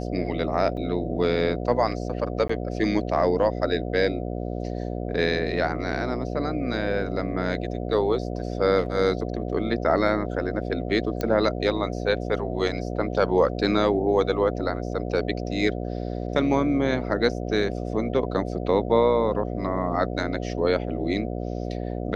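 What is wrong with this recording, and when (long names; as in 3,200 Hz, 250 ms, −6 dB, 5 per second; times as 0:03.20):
mains buzz 60 Hz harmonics 12 −30 dBFS
0:00.77: drop-out 2.7 ms
0:02.48–0:02.49: drop-out 14 ms
0:11.21: click −14 dBFS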